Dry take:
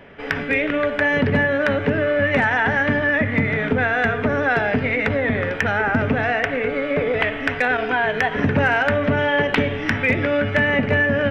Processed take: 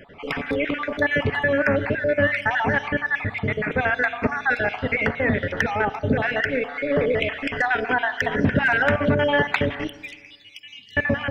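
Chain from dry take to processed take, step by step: random spectral dropouts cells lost 42%; 9.87–10.97 inverse Chebyshev high-pass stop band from 1600 Hz, stop band 40 dB; reverb RT60 1.4 s, pre-delay 35 ms, DRR 15 dB

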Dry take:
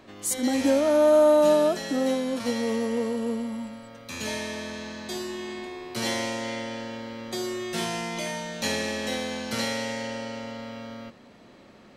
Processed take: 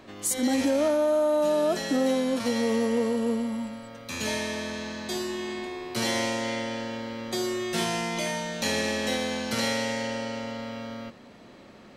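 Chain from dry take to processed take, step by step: limiter -18.5 dBFS, peak gain reduction 8.5 dB; gain +2 dB

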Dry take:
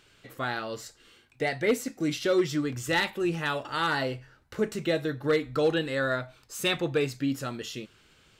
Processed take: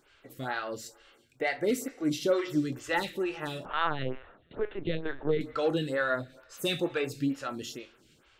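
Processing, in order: two-slope reverb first 0.42 s, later 1.7 s, from -17 dB, DRR 9.5 dB; 3.65–5.41 LPC vocoder at 8 kHz pitch kept; photocell phaser 2.2 Hz

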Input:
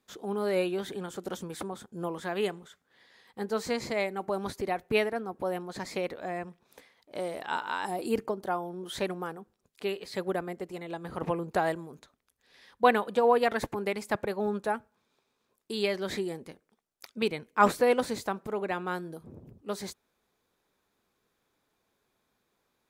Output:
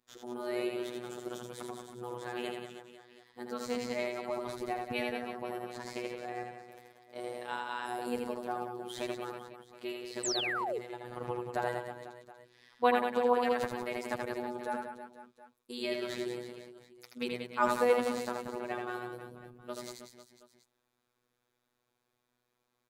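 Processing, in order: reverse bouncing-ball echo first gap 80 ms, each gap 1.3×, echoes 5; robotiser 122 Hz; painted sound fall, 10.23–10.79, 390–8500 Hz -30 dBFS; gain -4.5 dB

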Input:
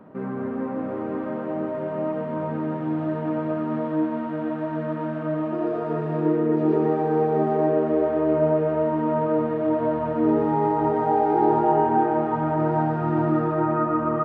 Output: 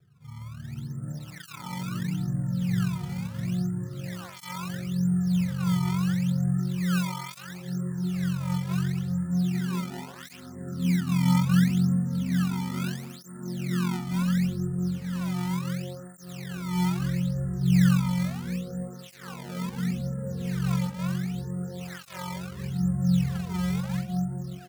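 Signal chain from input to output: dynamic EQ 1900 Hz, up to +3 dB, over -38 dBFS, Q 0.92; crackle 97/s -31 dBFS; bell 310 Hz -10.5 dB 1.7 oct; doubler 16 ms -3 dB; AGC gain up to 15 dB; vocal tract filter i; speed mistake 78 rpm record played at 45 rpm; reverse echo 43 ms -4.5 dB; decimation with a swept rate 23×, swing 160% 0.73 Hz; tape flanging out of phase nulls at 0.34 Hz, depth 3.7 ms

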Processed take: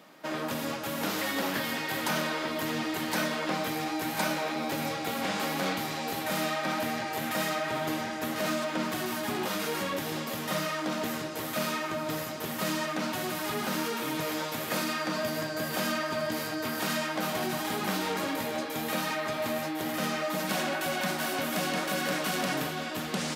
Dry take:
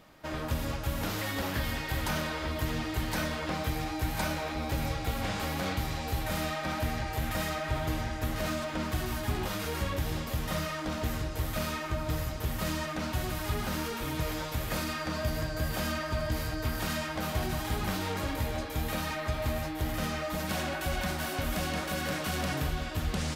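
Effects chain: HPF 180 Hz 24 dB/oct; gain +3.5 dB

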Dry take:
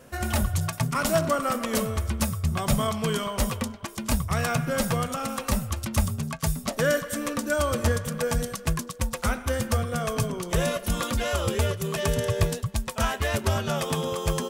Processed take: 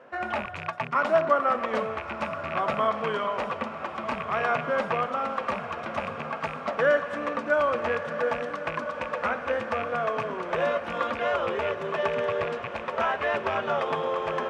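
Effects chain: rattling part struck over -24 dBFS, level -20 dBFS; tilt -3 dB/oct; in parallel at -1 dB: limiter -10.5 dBFS, peak gain reduction 9.5 dB; on the sum: BPF 720–2200 Hz; diffused feedback echo 1.349 s, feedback 58%, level -10 dB

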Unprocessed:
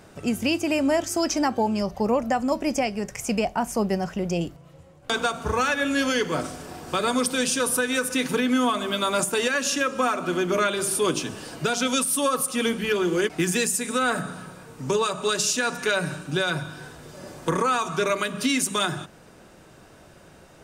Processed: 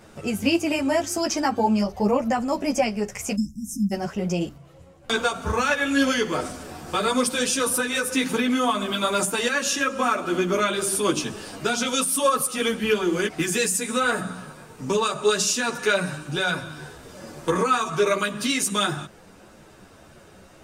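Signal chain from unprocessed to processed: spectral delete 3.35–3.92, 310–5100 Hz; ensemble effect; gain +4 dB

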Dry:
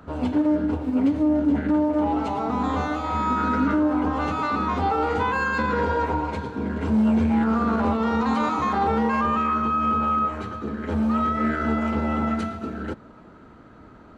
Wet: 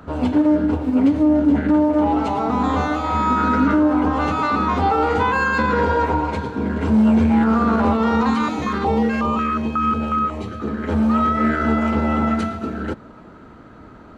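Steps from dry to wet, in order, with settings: 8.3–10.6 stepped notch 5.5 Hz 650–1700 Hz; gain +5 dB

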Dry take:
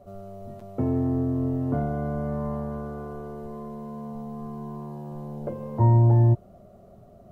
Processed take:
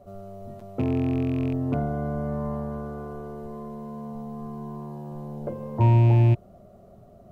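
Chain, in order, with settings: rattling part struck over -22 dBFS, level -31 dBFS

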